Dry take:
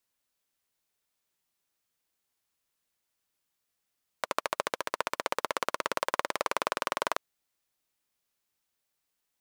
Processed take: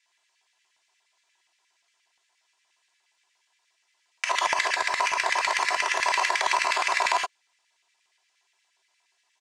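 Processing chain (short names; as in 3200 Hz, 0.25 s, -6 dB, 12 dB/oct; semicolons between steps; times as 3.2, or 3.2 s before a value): half-waves squared off; speaker cabinet 330–8000 Hz, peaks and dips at 390 Hz +8 dB, 610 Hz -7 dB, 1300 Hz -7 dB; comb 3 ms, depth 89%; non-linear reverb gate 0.1 s flat, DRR 4 dB; LFO high-pass square 8.5 Hz 820–2000 Hz; limiter -15.5 dBFS, peak gain reduction 11 dB; gain +6 dB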